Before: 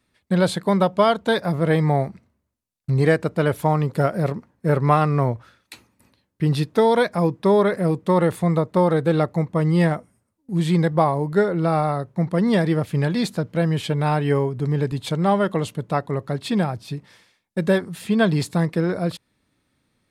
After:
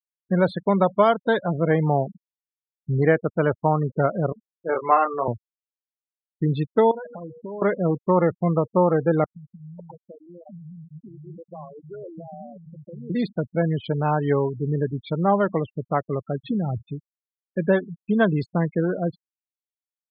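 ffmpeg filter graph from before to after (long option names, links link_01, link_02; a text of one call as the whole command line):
ffmpeg -i in.wav -filter_complex "[0:a]asettb=1/sr,asplit=3[link_01][link_02][link_03];[link_01]atrim=end=4.324[link_04];[link_02]atrim=start=4.32:end=5.28,asetpts=PTS-STARTPTS,afade=type=in:duration=0.004:curve=qsin,afade=type=out:start_time=0.956:duration=0.004:curve=qsin,highpass=470,lowpass=7300,asplit=2[link_05][link_06];[link_06]adelay=23,volume=-5dB[link_07];[link_05][link_07]amix=inputs=2:normalize=0,atrim=end_sample=42336[link_08];[link_03]atrim=start=5.276[link_09];[link_04][link_08]acrossfade=duration=0.004:curve1=hsin:curve2=qsin[link_10];[link_10][link_09]acrossfade=duration=0.004:curve1=qsin:curve2=hsin,asettb=1/sr,asplit=3[link_11][link_12][link_13];[link_11]atrim=end=6.914[link_14];[link_12]atrim=start=6.91:end=7.62,asetpts=PTS-STARTPTS,afade=type=in:duration=0.004:curve=qsin,afade=type=out:start_time=0.706:duration=0.004:curve=qsin,bandreject=frequency=60:width_type=h:width=6,bandreject=frequency=120:width_type=h:width=6,bandreject=frequency=180:width_type=h:width=6,bandreject=frequency=240:width_type=h:width=6,bandreject=frequency=300:width_type=h:width=6,bandreject=frequency=360:width_type=h:width=6,bandreject=frequency=420:width_type=h:width=6,bandreject=frequency=480:width_type=h:width=6,acompressor=threshold=-29dB:ratio=12:attack=3.2:release=140:knee=1:detection=peak[link_15];[link_13]atrim=start=7.616[link_16];[link_14][link_15]acrossfade=duration=0.004:curve1=hsin:curve2=qsin[link_17];[link_17][link_16]acrossfade=duration=0.004:curve1=qsin:curve2=hsin,asettb=1/sr,asplit=3[link_18][link_19][link_20];[link_18]atrim=end=9.244[link_21];[link_19]atrim=start=9.24:end=13.1,asetpts=PTS-STARTPTS,afade=type=in:duration=0.004:curve=qsin,afade=type=out:start_time=3.856:duration=0.004:curve=qsin,acompressor=threshold=-30dB:ratio=20:attack=3.2:release=140:knee=1:detection=peak,acrossover=split=210[link_22][link_23];[link_23]adelay=550[link_24];[link_22][link_24]amix=inputs=2:normalize=0,atrim=end_sample=170226[link_25];[link_20]atrim=start=13.096[link_26];[link_21][link_25]acrossfade=duration=0.004:curve1=hsin:curve2=qsin[link_27];[link_27][link_26]acrossfade=duration=0.004:curve1=qsin:curve2=hsin,asettb=1/sr,asplit=3[link_28][link_29][link_30];[link_28]atrim=end=16.444[link_31];[link_29]atrim=start=16.44:end=16.84,asetpts=PTS-STARTPTS,afade=type=in:duration=0.004:curve=qsin,afade=type=out:start_time=0.396:duration=0.004:curve=qsin,aemphasis=mode=reproduction:type=riaa,acompressor=threshold=-19dB:ratio=8:attack=3.2:release=140:knee=1:detection=peak,lowpass=frequency=3900:width_type=q:width=1.7[link_32];[link_30]atrim=start=16.836[link_33];[link_31][link_32]acrossfade=duration=0.004:curve1=hsin:curve2=qsin[link_34];[link_34][link_33]acrossfade=duration=0.004:curve1=qsin:curve2=hsin,highpass=frequency=150:poles=1,afftfilt=real='re*gte(hypot(re,im),0.0631)':imag='im*gte(hypot(re,im),0.0631)':win_size=1024:overlap=0.75,lowpass=2500" out.wav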